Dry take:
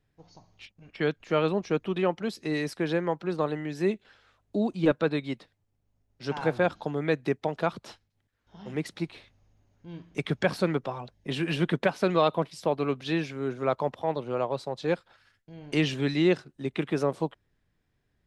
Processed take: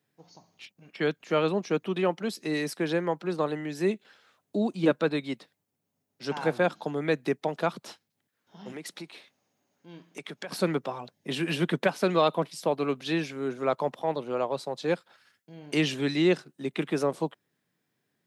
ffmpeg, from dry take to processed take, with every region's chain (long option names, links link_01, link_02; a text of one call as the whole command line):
ffmpeg -i in.wav -filter_complex "[0:a]asettb=1/sr,asplit=3[link_01][link_02][link_03];[link_01]atrim=end=8.724[link_04];[link_02]atrim=start=8.72:end=10.52,asetpts=PTS-STARTPTS,afade=type=in:duration=0.004:curve=qsin,afade=type=out:start_time=1.796:duration=0.004:curve=qsin,highpass=frequency=310:poles=1,acompressor=threshold=-36dB:ratio=4:attack=3.2:release=140:knee=1:detection=peak[link_05];[link_03]atrim=start=10.516[link_06];[link_04][link_05]acrossfade=duration=0.004:curve1=hsin:curve2=qsin[link_07];[link_07][link_06]acrossfade=duration=0.004:curve1=qsin:curve2=hsin,highpass=frequency=150:width=0.5412,highpass=frequency=150:width=1.3066,highshelf=frequency=8100:gain=11" out.wav